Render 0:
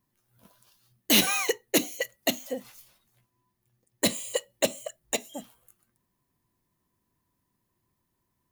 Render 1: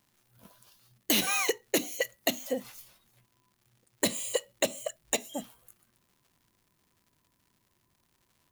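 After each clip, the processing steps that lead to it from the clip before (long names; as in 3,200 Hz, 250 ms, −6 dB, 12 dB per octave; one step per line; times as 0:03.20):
downward compressor 6 to 1, threshold −26 dBFS, peak gain reduction 9.5 dB
surface crackle 190 per second −57 dBFS
level +2.5 dB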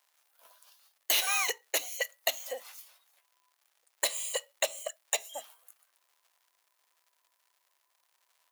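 high-pass filter 600 Hz 24 dB per octave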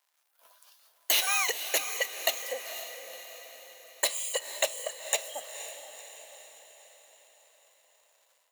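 feedback delay with all-pass diffusion 495 ms, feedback 53%, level −10 dB
automatic gain control gain up to 6 dB
level −4 dB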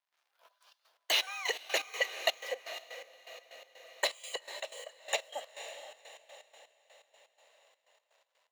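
three-way crossover with the lows and the highs turned down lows −15 dB, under 280 Hz, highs −17 dB, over 5,200 Hz
gate pattern ".xxx.x.x.x..x.x" 124 BPM −12 dB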